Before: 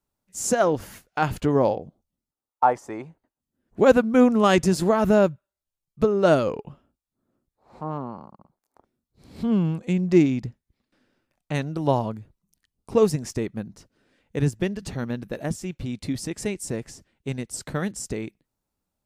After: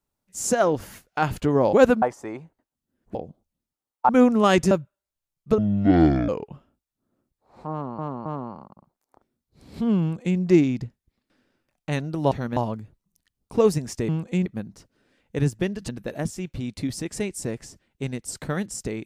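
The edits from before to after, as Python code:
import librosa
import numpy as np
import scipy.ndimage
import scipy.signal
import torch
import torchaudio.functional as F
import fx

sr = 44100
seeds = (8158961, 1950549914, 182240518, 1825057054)

y = fx.edit(x, sr, fx.swap(start_s=1.73, length_s=0.94, other_s=3.8, other_length_s=0.29),
    fx.cut(start_s=4.71, length_s=0.51),
    fx.speed_span(start_s=6.09, length_s=0.36, speed=0.51),
    fx.repeat(start_s=7.88, length_s=0.27, count=3),
    fx.duplicate(start_s=9.64, length_s=0.37, to_s=13.46),
    fx.move(start_s=14.89, length_s=0.25, to_s=11.94), tone=tone)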